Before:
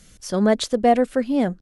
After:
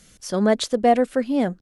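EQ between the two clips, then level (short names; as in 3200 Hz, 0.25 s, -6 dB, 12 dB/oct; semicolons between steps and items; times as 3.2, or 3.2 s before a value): low shelf 99 Hz -7.5 dB; 0.0 dB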